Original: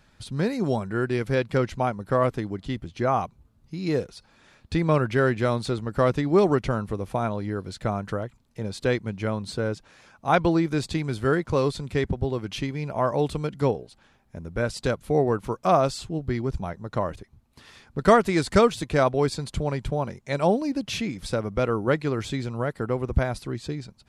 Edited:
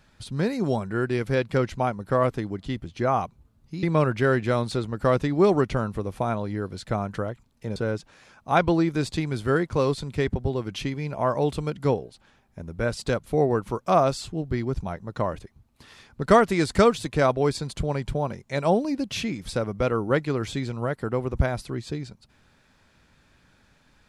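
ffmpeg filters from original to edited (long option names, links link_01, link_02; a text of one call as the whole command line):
ffmpeg -i in.wav -filter_complex "[0:a]asplit=3[link_01][link_02][link_03];[link_01]atrim=end=3.832[link_04];[link_02]atrim=start=4.768:end=8.702[link_05];[link_03]atrim=start=9.528[link_06];[link_04][link_05]acrossfade=duration=0.004:curve1=hsin:curve2=hsin[link_07];[link_07][link_06]acrossfade=duration=0.004:curve1=hsin:curve2=hsin" out.wav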